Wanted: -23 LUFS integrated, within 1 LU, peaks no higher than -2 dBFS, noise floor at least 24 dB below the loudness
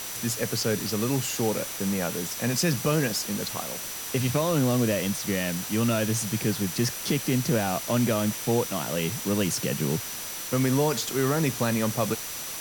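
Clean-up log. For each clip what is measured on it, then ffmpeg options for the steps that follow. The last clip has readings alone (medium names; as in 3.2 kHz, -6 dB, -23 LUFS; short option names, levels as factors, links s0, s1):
steady tone 5.9 kHz; tone level -41 dBFS; noise floor -35 dBFS; noise floor target -51 dBFS; loudness -26.5 LUFS; peak level -12.5 dBFS; loudness target -23.0 LUFS
-> -af "bandreject=f=5900:w=30"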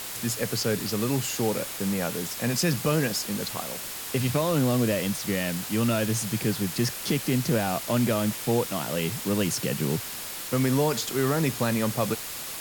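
steady tone not found; noise floor -36 dBFS; noise floor target -51 dBFS
-> -af "afftdn=nr=15:nf=-36"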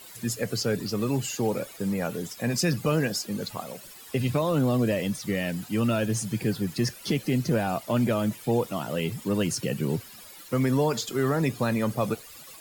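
noise floor -46 dBFS; noise floor target -52 dBFS
-> -af "afftdn=nr=6:nf=-46"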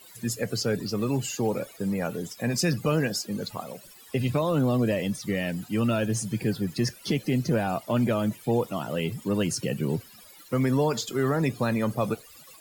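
noise floor -50 dBFS; noise floor target -52 dBFS
-> -af "afftdn=nr=6:nf=-50"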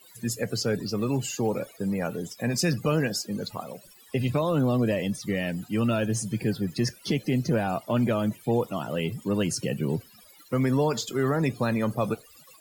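noise floor -54 dBFS; loudness -27.5 LUFS; peak level -13.5 dBFS; loudness target -23.0 LUFS
-> -af "volume=1.68"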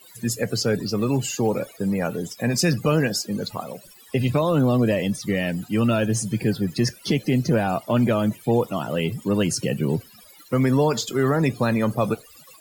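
loudness -23.0 LUFS; peak level -9.0 dBFS; noise floor -49 dBFS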